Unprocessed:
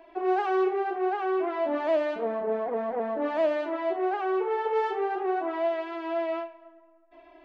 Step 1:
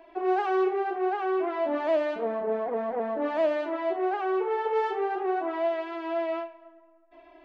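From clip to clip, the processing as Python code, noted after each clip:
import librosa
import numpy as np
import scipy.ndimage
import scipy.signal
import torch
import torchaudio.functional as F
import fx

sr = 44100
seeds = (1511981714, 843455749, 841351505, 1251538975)

y = x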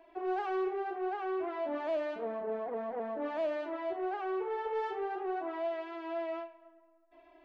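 y = 10.0 ** (-17.5 / 20.0) * np.tanh(x / 10.0 ** (-17.5 / 20.0))
y = y * librosa.db_to_amplitude(-7.0)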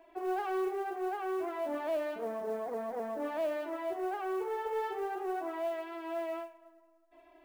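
y = fx.mod_noise(x, sr, seeds[0], snr_db=29)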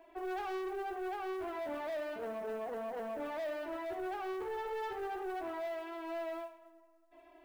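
y = 10.0 ** (-35.5 / 20.0) * np.tanh(x / 10.0 ** (-35.5 / 20.0))
y = fx.echo_feedback(y, sr, ms=73, feedback_pct=56, wet_db=-16.5)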